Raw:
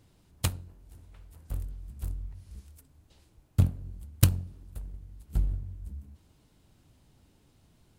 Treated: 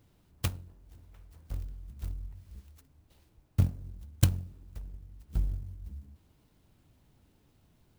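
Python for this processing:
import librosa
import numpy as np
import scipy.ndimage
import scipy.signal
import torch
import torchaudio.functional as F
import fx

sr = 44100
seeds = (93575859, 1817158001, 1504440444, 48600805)

y = fx.clock_jitter(x, sr, seeds[0], jitter_ms=0.036)
y = y * 10.0 ** (-2.5 / 20.0)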